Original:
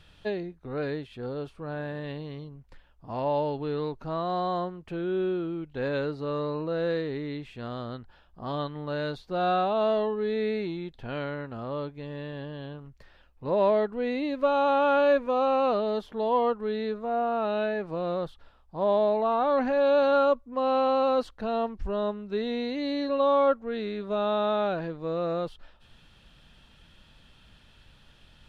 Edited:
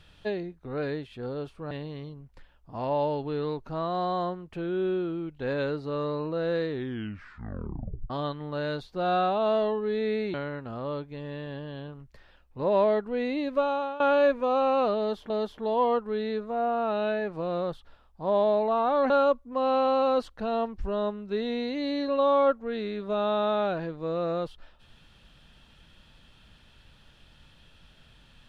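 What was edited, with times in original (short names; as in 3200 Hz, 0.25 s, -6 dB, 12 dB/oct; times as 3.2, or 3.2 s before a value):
1.71–2.06 cut
7.04 tape stop 1.41 s
10.69–11.2 cut
14.4–14.86 fade out, to -19 dB
15.84–16.16 loop, 2 plays
19.64–20.11 cut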